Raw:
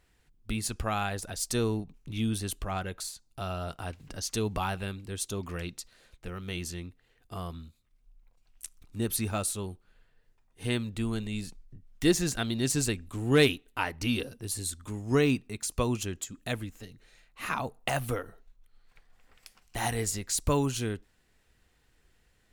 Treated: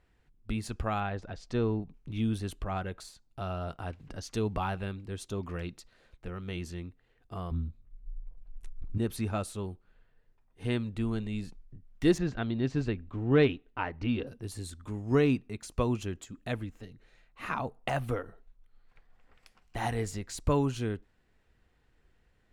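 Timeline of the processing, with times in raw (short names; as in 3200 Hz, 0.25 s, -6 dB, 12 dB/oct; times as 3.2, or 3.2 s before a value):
1–1.83 air absorption 150 m
7.51–8.98 tilt -3.5 dB/oct
12.18–14.27 air absorption 200 m
whole clip: LPF 1800 Hz 6 dB/oct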